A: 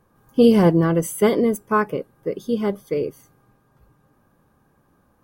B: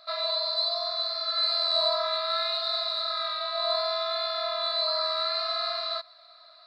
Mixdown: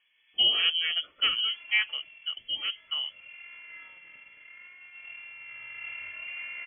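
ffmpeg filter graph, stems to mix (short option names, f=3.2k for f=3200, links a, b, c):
-filter_complex "[0:a]equalizer=f=120:w=0.43:g=-14.5,volume=-4dB[a];[1:a]adynamicsmooth=sensitivity=2.5:basefreq=1.1k,adelay=1400,volume=1dB,afade=t=out:st=2:d=0.32:silence=0.398107,afade=t=in:st=3.21:d=0.37:silence=0.446684,afade=t=in:st=5.38:d=0.52:silence=0.398107[b];[a][b]amix=inputs=2:normalize=0,lowpass=f=2.9k:t=q:w=0.5098,lowpass=f=2.9k:t=q:w=0.6013,lowpass=f=2.9k:t=q:w=0.9,lowpass=f=2.9k:t=q:w=2.563,afreqshift=-3400"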